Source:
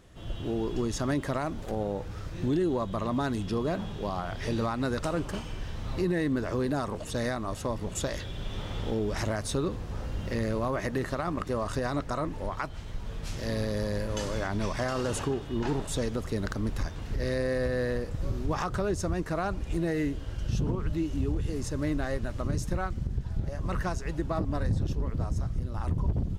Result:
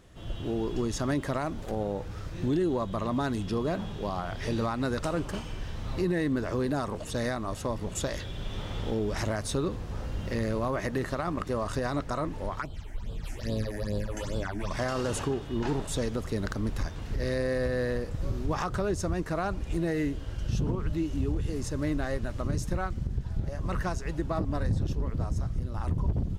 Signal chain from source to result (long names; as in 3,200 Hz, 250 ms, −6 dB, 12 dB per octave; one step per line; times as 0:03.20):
0:12.60–0:14.71: all-pass phaser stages 8, 2.4 Hz, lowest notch 140–2,000 Hz